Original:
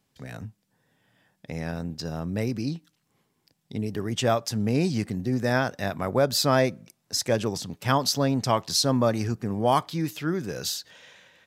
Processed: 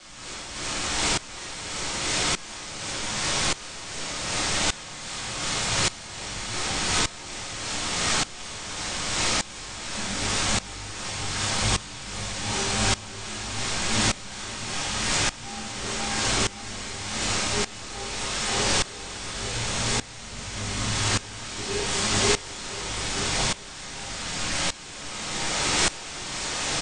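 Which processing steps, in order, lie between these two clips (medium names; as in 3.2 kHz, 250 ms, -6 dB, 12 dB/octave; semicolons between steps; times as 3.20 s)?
slices played last to first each 115 ms, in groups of 5; frequency weighting ITU-R 468; low-pass that closes with the level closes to 2.8 kHz; high-pass 51 Hz; pitch-class resonator A#, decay 0.17 s; word length cut 6-bit, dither triangular; rotary cabinet horn 6.3 Hz, later 0.6 Hz, at 6.89 s; on a send: bouncing-ball echo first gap 230 ms, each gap 0.9×, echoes 5; on the sum: simulated room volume 230 m³, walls furnished, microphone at 4.1 m; speed mistake 78 rpm record played at 33 rpm; sawtooth tremolo in dB swelling 0.85 Hz, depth 19 dB; trim +8 dB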